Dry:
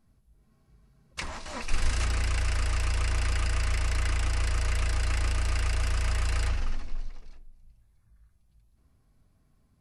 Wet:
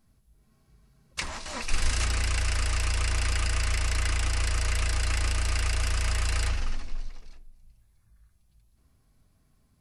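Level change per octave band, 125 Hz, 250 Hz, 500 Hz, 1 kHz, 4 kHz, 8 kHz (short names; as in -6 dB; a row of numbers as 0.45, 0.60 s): 0.0, 0.0, +0.5, +1.0, +4.5, +5.5 dB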